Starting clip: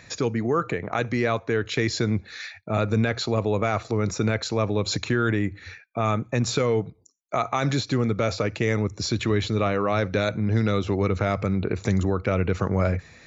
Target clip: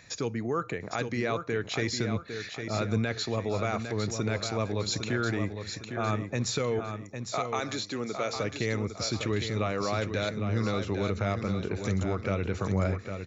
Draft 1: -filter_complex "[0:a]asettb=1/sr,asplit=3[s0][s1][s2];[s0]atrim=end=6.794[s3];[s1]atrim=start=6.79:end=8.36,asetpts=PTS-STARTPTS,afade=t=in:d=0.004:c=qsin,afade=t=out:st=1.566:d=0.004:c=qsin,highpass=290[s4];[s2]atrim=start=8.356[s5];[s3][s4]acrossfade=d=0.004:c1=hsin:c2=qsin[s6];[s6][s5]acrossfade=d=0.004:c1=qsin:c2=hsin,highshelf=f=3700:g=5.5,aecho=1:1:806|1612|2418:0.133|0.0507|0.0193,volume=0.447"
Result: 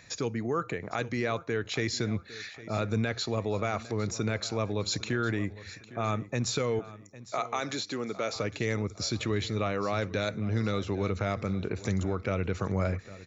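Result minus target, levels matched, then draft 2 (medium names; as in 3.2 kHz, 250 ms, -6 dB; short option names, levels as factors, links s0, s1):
echo-to-direct -10 dB
-filter_complex "[0:a]asettb=1/sr,asplit=3[s0][s1][s2];[s0]atrim=end=6.794[s3];[s1]atrim=start=6.79:end=8.36,asetpts=PTS-STARTPTS,afade=t=in:d=0.004:c=qsin,afade=t=out:st=1.566:d=0.004:c=qsin,highpass=290[s4];[s2]atrim=start=8.356[s5];[s3][s4]acrossfade=d=0.004:c1=hsin:c2=qsin[s6];[s6][s5]acrossfade=d=0.004:c1=qsin:c2=hsin,highshelf=f=3700:g=5.5,aecho=1:1:806|1612|2418|3224:0.422|0.16|0.0609|0.0231,volume=0.447"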